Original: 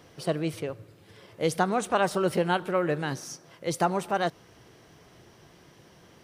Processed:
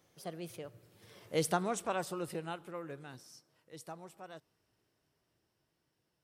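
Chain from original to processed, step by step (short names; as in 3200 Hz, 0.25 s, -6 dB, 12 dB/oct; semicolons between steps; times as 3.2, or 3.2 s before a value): Doppler pass-by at 1.32, 23 m/s, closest 8.3 m; high shelf 7100 Hz +10.5 dB; gain -5.5 dB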